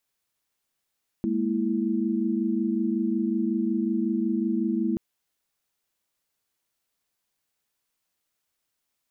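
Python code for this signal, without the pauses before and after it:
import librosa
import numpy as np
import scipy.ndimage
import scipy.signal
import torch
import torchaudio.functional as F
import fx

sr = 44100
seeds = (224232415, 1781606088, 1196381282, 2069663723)

y = fx.chord(sr, length_s=3.73, notes=(56, 58, 64), wave='sine', level_db=-27.0)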